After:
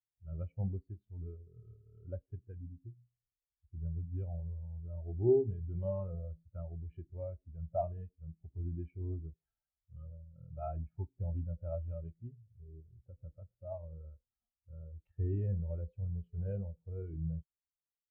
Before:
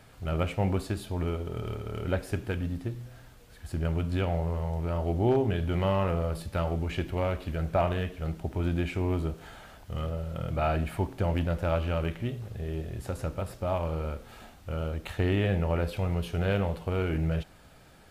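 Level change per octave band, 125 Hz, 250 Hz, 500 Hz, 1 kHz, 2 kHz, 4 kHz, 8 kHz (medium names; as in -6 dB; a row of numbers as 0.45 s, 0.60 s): -9.5 dB, -13.0 dB, -9.0 dB, -16.0 dB, under -35 dB, under -40 dB, under -25 dB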